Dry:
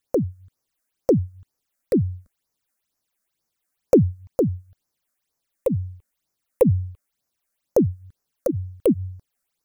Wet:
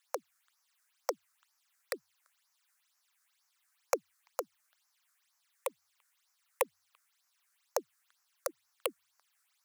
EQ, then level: HPF 980 Hz 24 dB/oct; high shelf 9200 Hz -8 dB; +7.0 dB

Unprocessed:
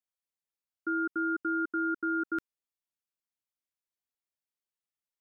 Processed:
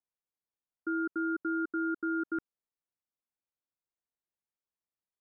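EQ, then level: LPF 1300 Hz 12 dB/oct; 0.0 dB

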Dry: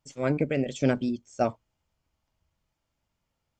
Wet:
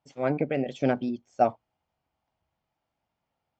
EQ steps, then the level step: HPF 160 Hz 6 dB/oct; air absorption 160 m; bell 760 Hz +9 dB 0.38 oct; 0.0 dB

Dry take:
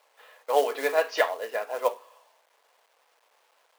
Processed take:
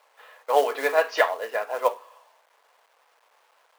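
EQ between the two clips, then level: bell 1200 Hz +5 dB 1.9 oct; 0.0 dB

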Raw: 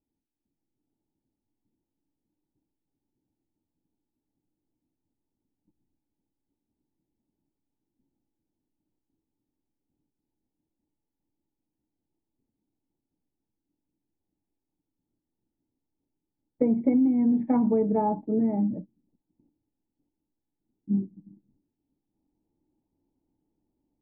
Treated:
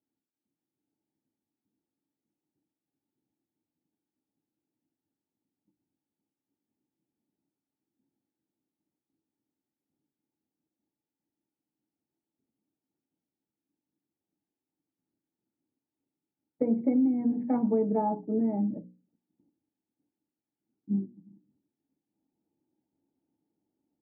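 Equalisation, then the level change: BPF 140–2000 Hz; notches 60/120/180/240/300/360/420/480/540 Hz; notch 1000 Hz, Q 10; -2.0 dB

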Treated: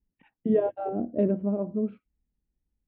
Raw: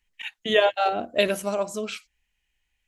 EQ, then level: band-pass 260 Hz, Q 1.3; air absorption 360 m; tilt -4 dB/oct; 0.0 dB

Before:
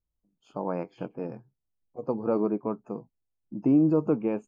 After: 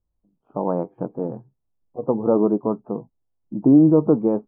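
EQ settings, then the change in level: LPF 1100 Hz 24 dB/oct; +8.0 dB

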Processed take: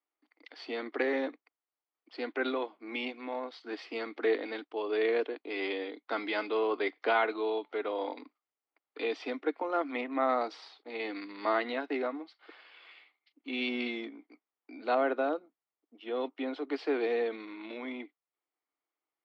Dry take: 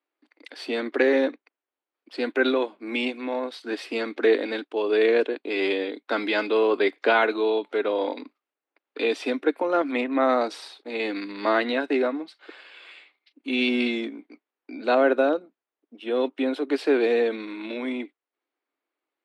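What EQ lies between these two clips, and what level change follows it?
speaker cabinet 380–4600 Hz, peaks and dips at 390 Hz -5 dB, 560 Hz -8 dB, 960 Hz -3 dB, 1600 Hz -8 dB, 2600 Hz -7 dB, 3800 Hz -8 dB; -2.5 dB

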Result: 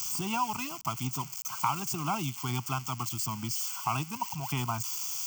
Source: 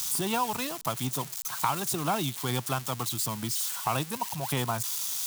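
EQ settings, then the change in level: HPF 44 Hz; fixed phaser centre 2600 Hz, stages 8; 0.0 dB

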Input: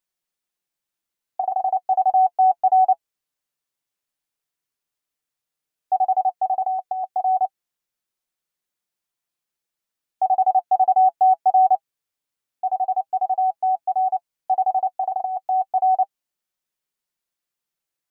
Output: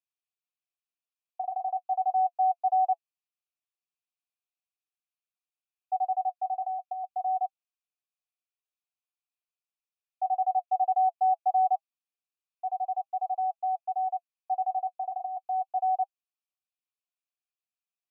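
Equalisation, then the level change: vowel filter a; tilt +5.5 dB/oct; low shelf 420 Hz -9.5 dB; -3.0 dB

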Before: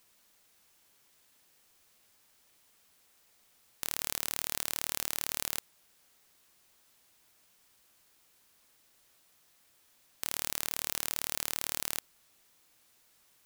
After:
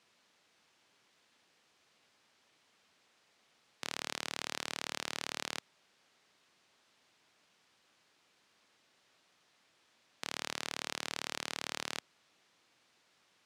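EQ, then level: BPF 130–4600 Hz; +1.5 dB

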